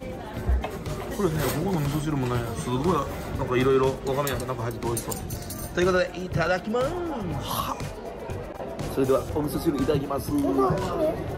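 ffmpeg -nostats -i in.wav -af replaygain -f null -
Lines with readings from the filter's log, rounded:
track_gain = +6.4 dB
track_peak = 0.184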